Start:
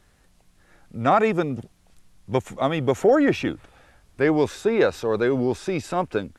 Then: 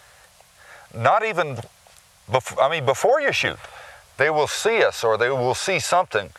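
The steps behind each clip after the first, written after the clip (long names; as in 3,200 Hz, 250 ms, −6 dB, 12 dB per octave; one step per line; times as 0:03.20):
drawn EQ curve 120 Hz 0 dB, 290 Hz −15 dB, 560 Hz +10 dB
downward compressor 6 to 1, threshold −19 dBFS, peak gain reduction 14.5 dB
high-pass filter 67 Hz
level +4 dB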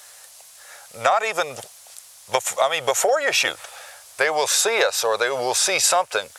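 bass and treble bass −15 dB, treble +13 dB
level −1 dB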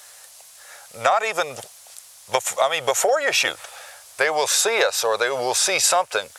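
no processing that can be heard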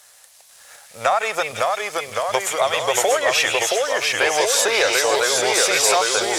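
delay with pitch and tempo change per echo 492 ms, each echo −1 semitone, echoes 3
echo through a band-pass that steps 167 ms, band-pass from 2,600 Hz, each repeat 0.7 octaves, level −3.5 dB
leveller curve on the samples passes 1
level −3.5 dB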